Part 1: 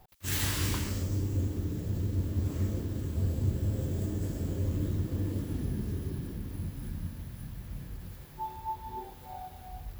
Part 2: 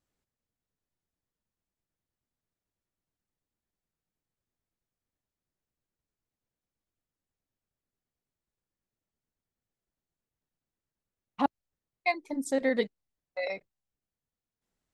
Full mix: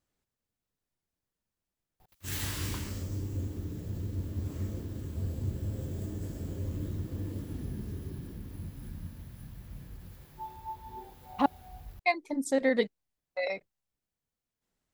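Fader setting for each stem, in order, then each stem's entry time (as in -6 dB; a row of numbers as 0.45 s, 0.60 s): -4.5 dB, +1.0 dB; 2.00 s, 0.00 s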